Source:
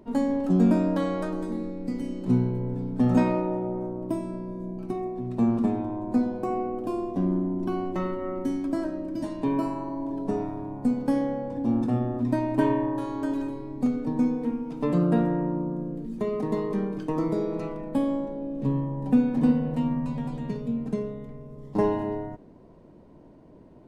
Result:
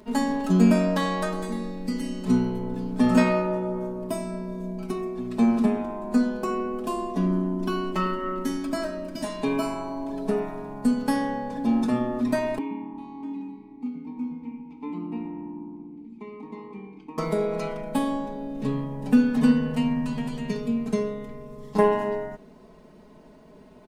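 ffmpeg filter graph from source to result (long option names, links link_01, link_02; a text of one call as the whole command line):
ffmpeg -i in.wav -filter_complex "[0:a]asettb=1/sr,asplit=3[link_01][link_02][link_03];[link_01]atrim=end=12.584[link_04];[link_02]atrim=start=12.58:end=17.18,asetpts=PTS-STARTPTS,afade=type=in:duration=0.004:curve=qsin,afade=type=out:start_time=4.596:duration=0.004:curve=qsin,asplit=3[link_05][link_06][link_07];[link_05]bandpass=frequency=300:width_type=q:width=8,volume=0dB[link_08];[link_06]bandpass=frequency=870:width_type=q:width=8,volume=-6dB[link_09];[link_07]bandpass=frequency=2240:width_type=q:width=8,volume=-9dB[link_10];[link_08][link_09][link_10]amix=inputs=3:normalize=0,asplit=4[link_11][link_12][link_13][link_14];[link_12]adelay=113,afreqshift=-81,volume=-18dB[link_15];[link_13]adelay=226,afreqshift=-162,volume=-27.9dB[link_16];[link_14]adelay=339,afreqshift=-243,volume=-37.8dB[link_17];[link_11][link_15][link_16][link_17]amix=inputs=4:normalize=0,atrim=end_sample=202860[link_18];[link_03]atrim=start=17.176[link_19];[link_04][link_18]acrossfade=duration=0.004:curve1=hsin:curve2=qsin[link_20];[link_20][link_19]acrossfade=duration=0.004:curve1=qsin:curve2=hsin,tiltshelf=frequency=1100:gain=-6.5,aecho=1:1:4.7:0.84,volume=4dB" out.wav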